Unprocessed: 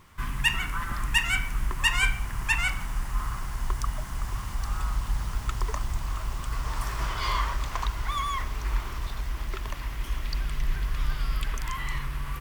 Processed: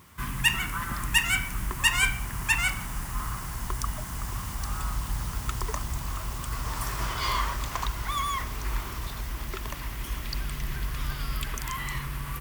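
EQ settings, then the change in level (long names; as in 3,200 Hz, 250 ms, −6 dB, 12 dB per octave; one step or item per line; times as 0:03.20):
high-pass filter 47 Hz
parametric band 200 Hz +3.5 dB 1.8 octaves
high-shelf EQ 7,800 Hz +10.5 dB
0.0 dB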